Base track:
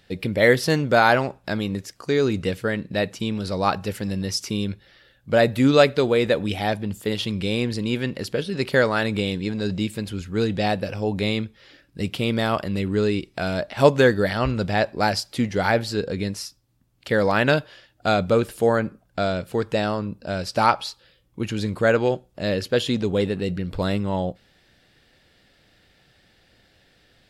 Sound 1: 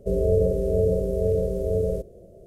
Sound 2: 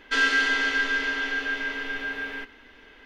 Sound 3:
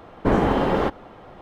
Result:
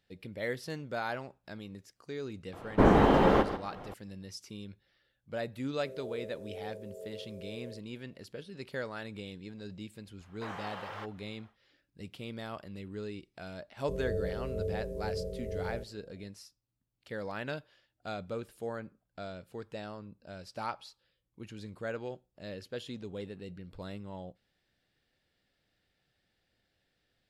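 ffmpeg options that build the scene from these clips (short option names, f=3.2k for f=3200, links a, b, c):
-filter_complex "[3:a]asplit=2[a][b];[1:a]asplit=2[c][d];[0:a]volume=-19dB[e];[a]aecho=1:1:145:0.282[f];[c]highpass=460[g];[b]highpass=1.1k[h];[f]atrim=end=1.41,asetpts=PTS-STARTPTS,volume=-2.5dB,afade=t=in:d=0.004:c=hsin,afade=t=out:st=1.406:d=0.004:c=hsin,adelay=2530[i];[g]atrim=end=2.46,asetpts=PTS-STARTPTS,volume=-17.5dB,afade=t=in:d=0.004:c=hsin,afade=t=out:st=2.456:d=0.004:c=hsin,adelay=5780[j];[h]atrim=end=1.41,asetpts=PTS-STARTPTS,volume=-13dB,afade=t=in:d=0.1,afade=t=out:st=1.31:d=0.1,adelay=10160[k];[d]atrim=end=2.46,asetpts=PTS-STARTPTS,volume=-13.5dB,afade=t=in:d=0.004:c=hsin,afade=t=out:st=2.456:d=0.004:c=hsin,adelay=13820[l];[e][i][j][k][l]amix=inputs=5:normalize=0"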